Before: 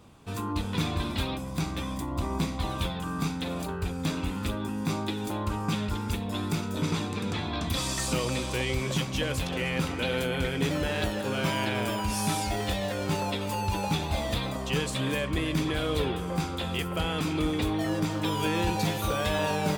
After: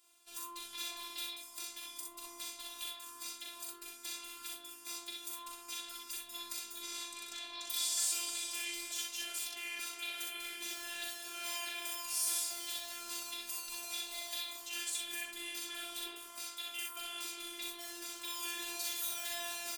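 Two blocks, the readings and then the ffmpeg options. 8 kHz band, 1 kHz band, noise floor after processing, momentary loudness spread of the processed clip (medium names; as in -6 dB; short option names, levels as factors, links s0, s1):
+0.5 dB, -17.0 dB, -53 dBFS, 9 LU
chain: -af "aderivative,aecho=1:1:41|62:0.596|0.708,afftfilt=real='hypot(re,im)*cos(PI*b)':imag='0':win_size=512:overlap=0.75,volume=1.12"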